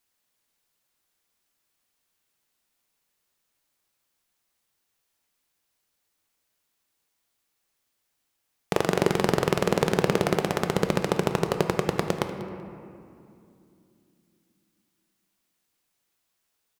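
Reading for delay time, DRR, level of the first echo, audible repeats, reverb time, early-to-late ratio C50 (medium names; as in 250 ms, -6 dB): 191 ms, 6.0 dB, -18.0 dB, 1, 2.6 s, 7.5 dB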